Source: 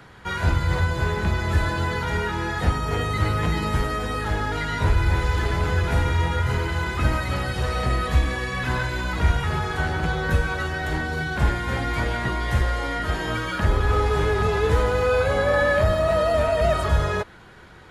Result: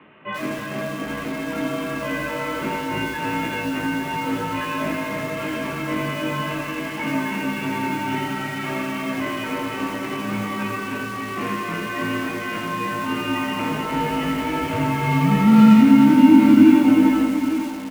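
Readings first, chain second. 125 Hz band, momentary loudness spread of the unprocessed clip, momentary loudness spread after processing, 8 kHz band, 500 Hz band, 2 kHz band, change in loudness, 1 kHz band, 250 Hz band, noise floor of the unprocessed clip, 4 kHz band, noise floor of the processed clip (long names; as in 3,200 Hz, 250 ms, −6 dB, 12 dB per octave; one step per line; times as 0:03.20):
−6.0 dB, 6 LU, 15 LU, +1.5 dB, −4.5 dB, −1.0 dB, +3.0 dB, +1.0 dB, +14.5 dB, −45 dBFS, 0.0 dB, −30 dBFS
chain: single-sideband voice off tune −360 Hz 530–3,100 Hz
high-frequency loss of the air 460 metres
in parallel at −3 dB: hard clipping −22 dBFS, distortion −15 dB
on the sum: high-pass filter 230 Hz 12 dB per octave
flat-topped bell 840 Hz −14 dB 2.4 octaves
double-tracking delay 19 ms −3.5 dB
multi-tap delay 308/860 ms −6.5/−9.5 dB
feedback echo at a low word length 83 ms, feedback 35%, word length 7 bits, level −4.5 dB
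level +7.5 dB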